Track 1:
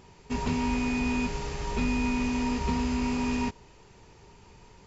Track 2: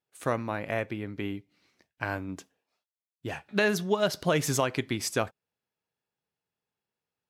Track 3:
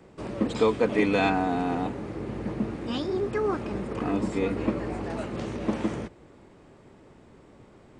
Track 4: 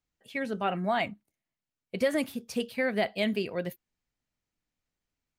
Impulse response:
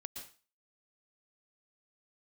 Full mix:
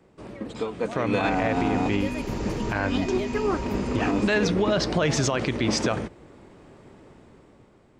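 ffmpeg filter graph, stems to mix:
-filter_complex "[0:a]alimiter=limit=0.0794:level=0:latency=1:release=216,adelay=950,volume=0.316[s0];[1:a]lowpass=f=6200:w=0.5412,lowpass=f=6200:w=1.3066,adelay=700,volume=1[s1];[2:a]volume=0.531[s2];[3:a]volume=0.126,asplit=2[s3][s4];[s4]apad=whole_len=352757[s5];[s2][s5]sidechaincompress=threshold=0.00282:ratio=8:attack=34:release=118[s6];[s0][s1][s6][s3]amix=inputs=4:normalize=0,dynaudnorm=f=220:g=9:m=3.16,alimiter=limit=0.2:level=0:latency=1:release=53"

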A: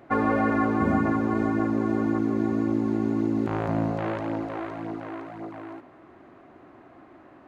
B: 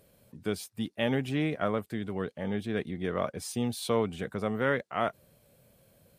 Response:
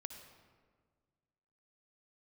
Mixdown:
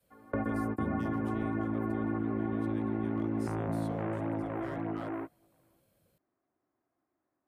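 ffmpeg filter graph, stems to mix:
-filter_complex "[0:a]lowpass=f=2500:w=0.5412,lowpass=f=2500:w=1.3066,volume=1.26[s0];[1:a]adynamicequalizer=threshold=0.00794:dfrequency=350:dqfactor=1:tfrequency=350:tqfactor=1:attack=5:release=100:ratio=0.375:range=2.5:mode=cutabove:tftype=bell,asoftclip=type=hard:threshold=0.106,volume=0.299,asplit=2[s1][s2];[s2]apad=whole_len=329588[s3];[s0][s3]sidechaingate=range=0.0178:threshold=0.001:ratio=16:detection=peak[s4];[s4][s1]amix=inputs=2:normalize=0,acrossover=split=160|480|6700[s5][s6][s7][s8];[s5]acompressor=threshold=0.0126:ratio=4[s9];[s6]acompressor=threshold=0.0158:ratio=4[s10];[s7]acompressor=threshold=0.00891:ratio=4[s11];[s8]acompressor=threshold=0.00112:ratio=4[s12];[s9][s10][s11][s12]amix=inputs=4:normalize=0"

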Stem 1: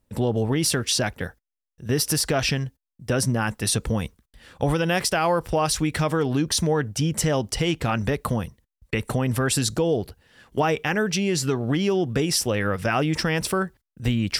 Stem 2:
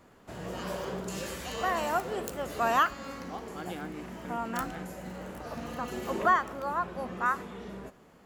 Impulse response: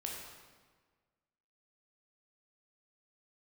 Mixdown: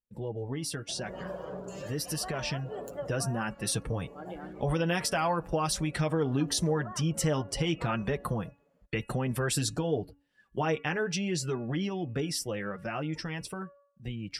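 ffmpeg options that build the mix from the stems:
-filter_complex "[0:a]dynaudnorm=f=340:g=17:m=2.24,volume=0.335,asplit=2[s0][s1];[1:a]equalizer=f=580:w=2.8:g=7,acrossover=split=180[s2][s3];[s3]acompressor=threshold=0.0398:ratio=6[s4];[s2][s4]amix=inputs=2:normalize=0,adelay=600,volume=0.841[s5];[s1]apad=whole_len=390395[s6];[s5][s6]sidechaincompress=threshold=0.0224:ratio=4:attack=33:release=308[s7];[s0][s7]amix=inputs=2:normalize=0,afftdn=nr=15:nf=-45,bandreject=f=283.2:t=h:w=4,bandreject=f=566.4:t=h:w=4,bandreject=f=849.6:t=h:w=4,bandreject=f=1132.8:t=h:w=4,bandreject=f=1416:t=h:w=4,bandreject=f=1699.2:t=h:w=4,bandreject=f=1982.4:t=h:w=4,bandreject=f=2265.6:t=h:w=4,bandreject=f=2548.8:t=h:w=4,bandreject=f=2832:t=h:w=4,flanger=delay=5:depth=2.3:regen=-26:speed=0.86:shape=triangular"

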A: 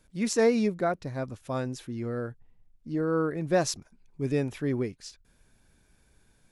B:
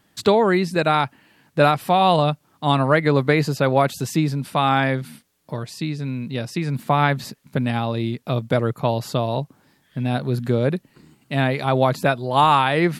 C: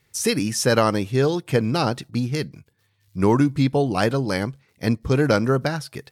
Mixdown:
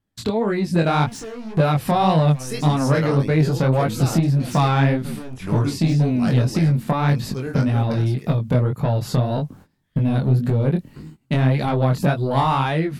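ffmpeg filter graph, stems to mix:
-filter_complex "[0:a]acompressor=threshold=0.0251:ratio=12,asoftclip=type=hard:threshold=0.0106,adelay=850,volume=1.33[s0];[1:a]lowshelf=f=360:g=9,agate=range=0.1:threshold=0.00794:ratio=16:detection=peak,volume=1[s1];[2:a]adelay=2250,volume=0.251[s2];[s0][s1]amix=inputs=2:normalize=0,lowshelf=f=70:g=12,acompressor=threshold=0.158:ratio=12,volume=1[s3];[s2][s3]amix=inputs=2:normalize=0,dynaudnorm=f=140:g=7:m=3.76,asoftclip=type=tanh:threshold=0.447,flanger=delay=18.5:depth=5.9:speed=1.8"

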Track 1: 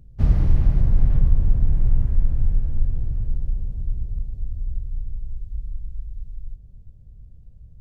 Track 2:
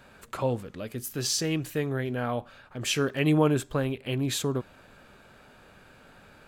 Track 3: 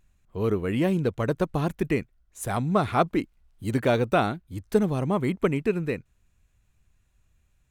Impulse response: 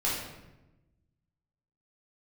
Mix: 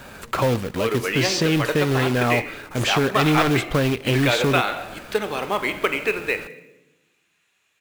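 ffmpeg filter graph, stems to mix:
-filter_complex "[1:a]acrusher=bits=2:mode=log:mix=0:aa=0.000001,aeval=exprs='0.299*sin(PI/2*2.51*val(0)/0.299)':c=same,volume=1.06[s0];[2:a]highpass=480,equalizer=f=2700:w=0.71:g=10.5,adelay=400,volume=1.41,asplit=2[s1][s2];[s2]volume=0.168[s3];[3:a]atrim=start_sample=2205[s4];[s3][s4]afir=irnorm=-1:irlink=0[s5];[s0][s1][s5]amix=inputs=3:normalize=0,acrossover=split=1700|5200[s6][s7][s8];[s6]acompressor=threshold=0.141:ratio=4[s9];[s7]acompressor=threshold=0.0794:ratio=4[s10];[s8]acompressor=threshold=0.00562:ratio=4[s11];[s9][s10][s11]amix=inputs=3:normalize=0,acrusher=bits=5:mode=log:mix=0:aa=0.000001"

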